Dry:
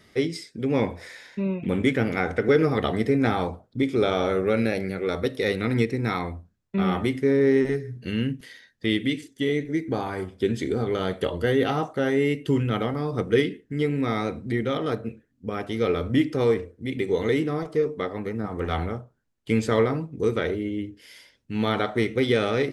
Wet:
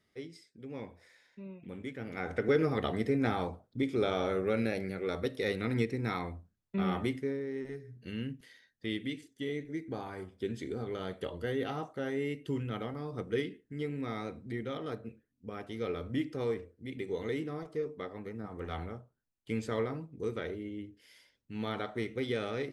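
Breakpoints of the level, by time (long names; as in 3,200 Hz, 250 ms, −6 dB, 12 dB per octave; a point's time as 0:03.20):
0:01.96 −19.5 dB
0:02.36 −8 dB
0:07.12 −8 dB
0:07.47 −19.5 dB
0:08.09 −12 dB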